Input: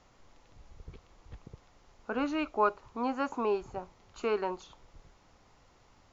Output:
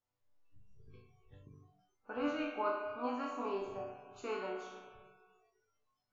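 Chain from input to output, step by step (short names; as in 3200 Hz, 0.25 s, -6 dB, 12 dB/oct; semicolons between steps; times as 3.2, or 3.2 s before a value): resonator bank G2 major, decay 0.72 s; spring tank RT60 2 s, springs 32/42 ms, chirp 70 ms, DRR 5 dB; spectral noise reduction 22 dB; gain +11 dB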